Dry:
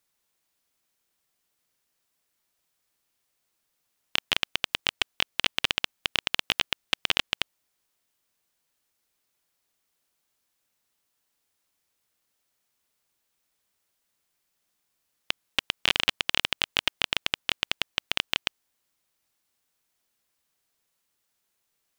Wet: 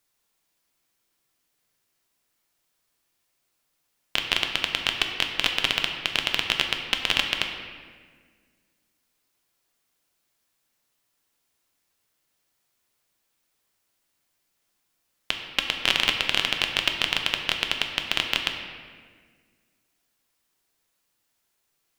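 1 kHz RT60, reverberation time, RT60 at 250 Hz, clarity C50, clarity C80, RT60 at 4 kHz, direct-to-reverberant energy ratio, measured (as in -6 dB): 1.5 s, 1.7 s, 2.3 s, 5.5 dB, 6.5 dB, 1.2 s, 3.0 dB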